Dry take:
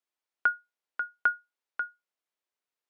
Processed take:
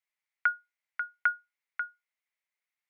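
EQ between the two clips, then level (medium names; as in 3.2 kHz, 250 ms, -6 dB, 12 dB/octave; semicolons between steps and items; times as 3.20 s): high-pass 660 Hz; peaking EQ 2.1 kHz +14.5 dB 0.47 oct; -4.0 dB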